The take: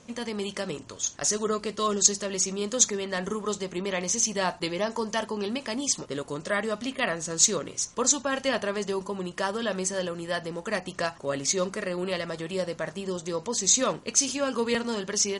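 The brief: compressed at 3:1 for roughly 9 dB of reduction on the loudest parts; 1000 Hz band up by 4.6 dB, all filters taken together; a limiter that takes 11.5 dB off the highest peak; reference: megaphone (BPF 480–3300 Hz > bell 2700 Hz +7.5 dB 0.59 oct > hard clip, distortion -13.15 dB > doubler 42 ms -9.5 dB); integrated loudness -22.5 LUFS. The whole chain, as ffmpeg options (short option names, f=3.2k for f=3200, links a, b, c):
-filter_complex "[0:a]equalizer=f=1k:t=o:g=5.5,acompressor=threshold=-27dB:ratio=3,alimiter=limit=-24dB:level=0:latency=1,highpass=480,lowpass=3.3k,equalizer=f=2.7k:t=o:w=0.59:g=7.5,asoftclip=type=hard:threshold=-30.5dB,asplit=2[a][b];[b]adelay=42,volume=-9.5dB[c];[a][c]amix=inputs=2:normalize=0,volume=15dB"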